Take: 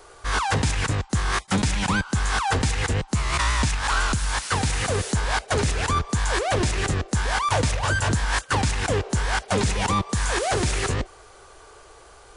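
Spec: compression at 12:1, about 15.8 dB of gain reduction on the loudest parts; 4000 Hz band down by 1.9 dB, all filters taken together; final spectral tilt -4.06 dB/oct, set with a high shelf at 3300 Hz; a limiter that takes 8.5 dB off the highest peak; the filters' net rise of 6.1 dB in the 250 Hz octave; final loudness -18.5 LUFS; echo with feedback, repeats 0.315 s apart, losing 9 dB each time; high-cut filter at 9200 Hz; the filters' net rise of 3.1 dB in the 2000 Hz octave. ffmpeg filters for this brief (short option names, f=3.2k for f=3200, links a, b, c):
-af "lowpass=9.2k,equalizer=f=250:t=o:g=8,equalizer=f=2k:t=o:g=4,highshelf=f=3.3k:g=5.5,equalizer=f=4k:t=o:g=-8,acompressor=threshold=-31dB:ratio=12,alimiter=level_in=4.5dB:limit=-24dB:level=0:latency=1,volume=-4.5dB,aecho=1:1:315|630|945|1260:0.355|0.124|0.0435|0.0152,volume=19dB"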